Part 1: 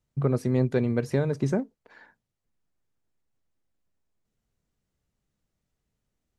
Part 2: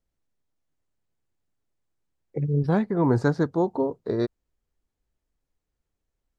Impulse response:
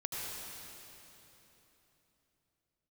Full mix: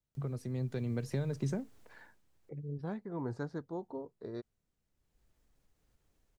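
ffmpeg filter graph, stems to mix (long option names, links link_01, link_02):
-filter_complex "[0:a]acrossover=split=160|3000[link_01][link_02][link_03];[link_02]acompressor=threshold=-31dB:ratio=6[link_04];[link_01][link_04][link_03]amix=inputs=3:normalize=0,volume=-10.5dB[link_05];[1:a]acompressor=mode=upward:threshold=-34dB:ratio=2.5,adelay=150,volume=-11.5dB,afade=type=out:start_time=1.82:duration=0.4:silence=0.266073[link_06];[link_05][link_06]amix=inputs=2:normalize=0,dynaudnorm=framelen=480:gausssize=3:maxgain=6dB"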